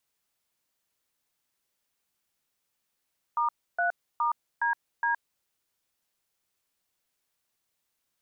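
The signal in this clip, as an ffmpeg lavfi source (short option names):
-f lavfi -i "aevalsrc='0.0501*clip(min(mod(t,0.415),0.118-mod(t,0.415))/0.002,0,1)*(eq(floor(t/0.415),0)*(sin(2*PI*941*mod(t,0.415))+sin(2*PI*1209*mod(t,0.415)))+eq(floor(t/0.415),1)*(sin(2*PI*697*mod(t,0.415))+sin(2*PI*1477*mod(t,0.415)))+eq(floor(t/0.415),2)*(sin(2*PI*941*mod(t,0.415))+sin(2*PI*1209*mod(t,0.415)))+eq(floor(t/0.415),3)*(sin(2*PI*941*mod(t,0.415))+sin(2*PI*1633*mod(t,0.415)))+eq(floor(t/0.415),4)*(sin(2*PI*941*mod(t,0.415))+sin(2*PI*1633*mod(t,0.415))))':d=2.075:s=44100"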